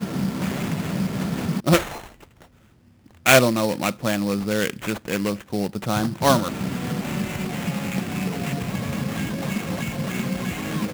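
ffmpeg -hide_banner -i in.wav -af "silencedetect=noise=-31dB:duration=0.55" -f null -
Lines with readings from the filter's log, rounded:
silence_start: 2.06
silence_end: 3.26 | silence_duration: 1.20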